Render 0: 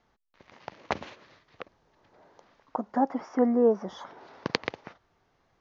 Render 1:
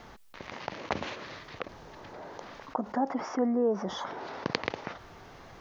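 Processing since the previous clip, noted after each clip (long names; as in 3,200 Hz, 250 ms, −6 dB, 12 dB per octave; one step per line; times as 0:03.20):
envelope flattener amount 50%
level −6 dB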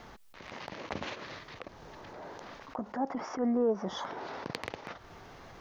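transient designer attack −9 dB, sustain −5 dB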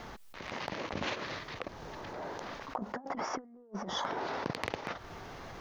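compressor whose output falls as the input rises −38 dBFS, ratio −0.5
level +1 dB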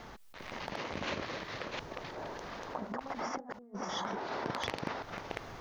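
delay that plays each chunk backwards 359 ms, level −1 dB
level −3 dB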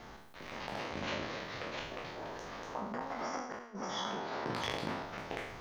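peak hold with a decay on every bin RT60 0.80 s
level −3.5 dB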